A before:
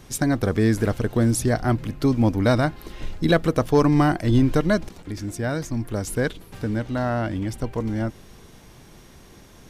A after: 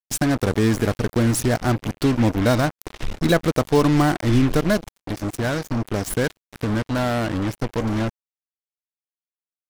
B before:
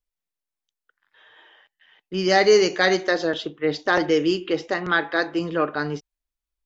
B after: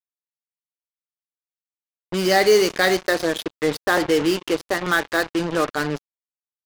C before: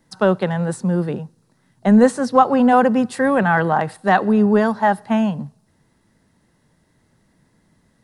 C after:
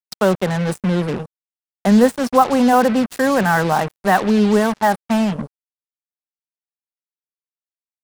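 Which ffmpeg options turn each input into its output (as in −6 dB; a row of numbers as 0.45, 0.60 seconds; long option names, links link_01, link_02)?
-filter_complex "[0:a]equalizer=frequency=63:width_type=o:width=0.34:gain=-12.5,asplit=2[link_01][link_02];[link_02]acompressor=threshold=-29dB:ratio=10,volume=0dB[link_03];[link_01][link_03]amix=inputs=2:normalize=0,acrusher=bits=3:mix=0:aa=0.5,volume=-1dB"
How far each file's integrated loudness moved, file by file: +1.0, +1.0, +0.5 LU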